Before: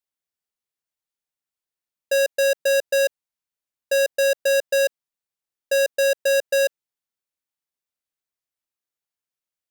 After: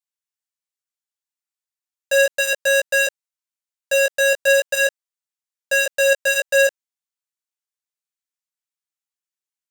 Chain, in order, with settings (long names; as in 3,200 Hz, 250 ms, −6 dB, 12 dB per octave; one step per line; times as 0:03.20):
high-pass filter 930 Hz 12 dB per octave
parametric band 7,300 Hz +4.5 dB 0.78 octaves
leveller curve on the samples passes 3
chorus effect 0.36 Hz, delay 15 ms, depth 3.7 ms
level +5 dB